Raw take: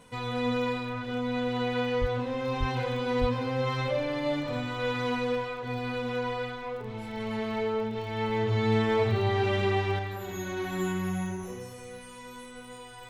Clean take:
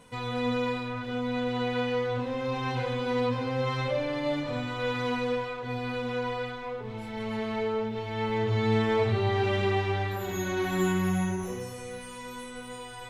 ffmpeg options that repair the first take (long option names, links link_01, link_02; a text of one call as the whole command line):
ffmpeg -i in.wav -filter_complex "[0:a]adeclick=threshold=4,asplit=3[link_01][link_02][link_03];[link_01]afade=type=out:start_time=2:duration=0.02[link_04];[link_02]highpass=frequency=140:width=0.5412,highpass=frequency=140:width=1.3066,afade=type=in:start_time=2:duration=0.02,afade=type=out:start_time=2.12:duration=0.02[link_05];[link_03]afade=type=in:start_time=2.12:duration=0.02[link_06];[link_04][link_05][link_06]amix=inputs=3:normalize=0,asplit=3[link_07][link_08][link_09];[link_07]afade=type=out:start_time=2.59:duration=0.02[link_10];[link_08]highpass=frequency=140:width=0.5412,highpass=frequency=140:width=1.3066,afade=type=in:start_time=2.59:duration=0.02,afade=type=out:start_time=2.71:duration=0.02[link_11];[link_09]afade=type=in:start_time=2.71:duration=0.02[link_12];[link_10][link_11][link_12]amix=inputs=3:normalize=0,asplit=3[link_13][link_14][link_15];[link_13]afade=type=out:start_time=3.2:duration=0.02[link_16];[link_14]highpass=frequency=140:width=0.5412,highpass=frequency=140:width=1.3066,afade=type=in:start_time=3.2:duration=0.02,afade=type=out:start_time=3.32:duration=0.02[link_17];[link_15]afade=type=in:start_time=3.32:duration=0.02[link_18];[link_16][link_17][link_18]amix=inputs=3:normalize=0,asetnsamples=nb_out_samples=441:pad=0,asendcmd='9.99 volume volume 4dB',volume=0dB" out.wav